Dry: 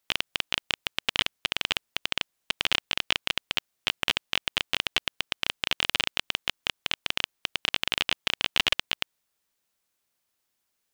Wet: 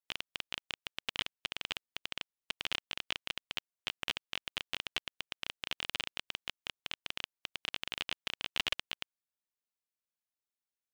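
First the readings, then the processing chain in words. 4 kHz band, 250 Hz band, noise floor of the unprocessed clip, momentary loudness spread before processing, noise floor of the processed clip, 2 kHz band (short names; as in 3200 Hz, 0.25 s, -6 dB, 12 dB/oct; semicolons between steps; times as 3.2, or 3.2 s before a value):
-11.0 dB, -11.0 dB, -79 dBFS, 5 LU, under -85 dBFS, -11.0 dB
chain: upward expander 1.5:1, over -43 dBFS; gain -8.5 dB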